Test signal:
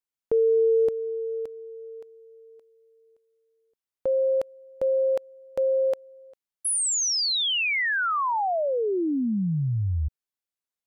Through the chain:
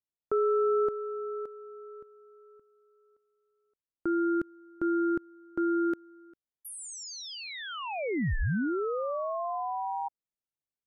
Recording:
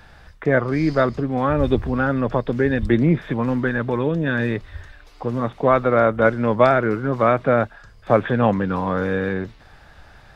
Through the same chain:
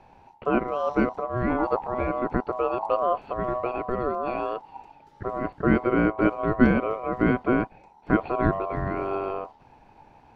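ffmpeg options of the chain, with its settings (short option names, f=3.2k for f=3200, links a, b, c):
-af "aeval=exprs='val(0)*sin(2*PI*870*n/s)':c=same,tiltshelf=f=890:g=9,volume=-5.5dB"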